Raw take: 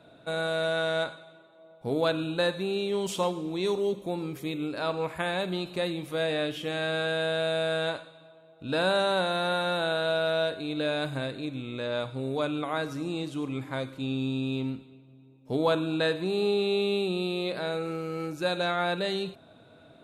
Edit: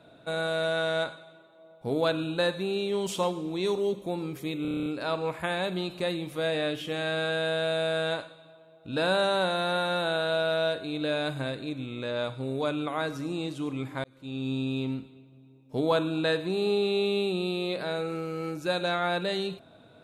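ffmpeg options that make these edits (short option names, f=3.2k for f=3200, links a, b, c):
-filter_complex "[0:a]asplit=10[a][b][c][d][e][f][g][h][i][j];[a]atrim=end=4.652[k];[b]atrim=start=4.618:end=4.652[l];[c]atrim=start=4.618:end=4.652[m];[d]atrim=start=4.618:end=4.652[n];[e]atrim=start=4.618:end=4.652[o];[f]atrim=start=4.618:end=4.652[p];[g]atrim=start=4.618:end=4.652[q];[h]atrim=start=4.618:end=4.652[r];[i]atrim=start=4.618:end=13.8,asetpts=PTS-STARTPTS,afade=t=out:st=9.178:d=0.004:c=hsin[s];[j]atrim=start=13.8,asetpts=PTS-STARTPTS,afade=t=in:d=0.5[t];[k][l]acrossfade=d=0.004:c1=hsin:c2=hsin[u];[u][m]acrossfade=d=0.004:c1=hsin:c2=hsin[v];[v][n]acrossfade=d=0.004:c1=hsin:c2=hsin[w];[w][o]acrossfade=d=0.004:c1=hsin:c2=hsin[x];[x][p]acrossfade=d=0.004:c1=hsin:c2=hsin[y];[y][q]acrossfade=d=0.004:c1=hsin:c2=hsin[z];[z][r]acrossfade=d=0.004:c1=hsin:c2=hsin[aa];[s][t]concat=n=2:v=0:a=1[ab];[aa][ab]acrossfade=d=0.004:c1=hsin:c2=hsin"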